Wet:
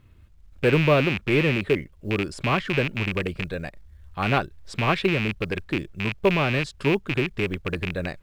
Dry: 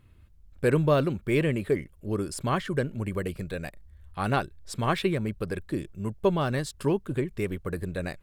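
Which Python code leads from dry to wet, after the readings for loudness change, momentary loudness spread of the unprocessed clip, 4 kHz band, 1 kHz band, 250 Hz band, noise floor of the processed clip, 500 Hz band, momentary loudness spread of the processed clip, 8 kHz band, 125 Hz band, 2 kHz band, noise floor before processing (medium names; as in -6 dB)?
+4.5 dB, 10 LU, +9.0 dB, +3.5 dB, +3.0 dB, -52 dBFS, +3.0 dB, 9 LU, -4.0 dB, +3.0 dB, +9.5 dB, -55 dBFS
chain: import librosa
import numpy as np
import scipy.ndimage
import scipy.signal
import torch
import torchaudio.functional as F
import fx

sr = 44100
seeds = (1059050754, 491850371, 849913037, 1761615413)

y = fx.rattle_buzz(x, sr, strikes_db=-33.0, level_db=-18.0)
y = scipy.signal.sosfilt(scipy.signal.butter(2, 5200.0, 'lowpass', fs=sr, output='sos'), y)
y = fx.quant_companded(y, sr, bits=8)
y = y * librosa.db_to_amplitude(3.0)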